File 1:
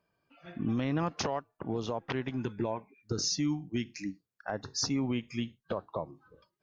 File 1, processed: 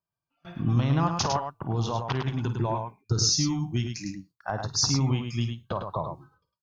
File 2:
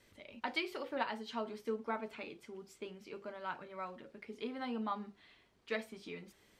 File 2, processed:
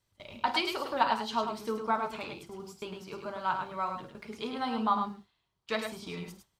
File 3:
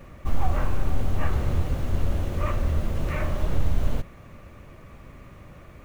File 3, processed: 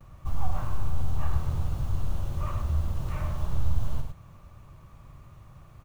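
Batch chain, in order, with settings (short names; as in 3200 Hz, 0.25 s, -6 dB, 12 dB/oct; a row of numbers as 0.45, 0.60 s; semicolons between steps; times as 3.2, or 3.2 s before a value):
ten-band EQ 125 Hz +5 dB, 250 Hz -8 dB, 500 Hz -8 dB, 1000 Hz +4 dB, 2000 Hz -10 dB; gate with hold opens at -47 dBFS; tapped delay 51/104 ms -12.5/-6 dB; normalise peaks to -12 dBFS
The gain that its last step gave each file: +8.5, +12.0, -5.0 dB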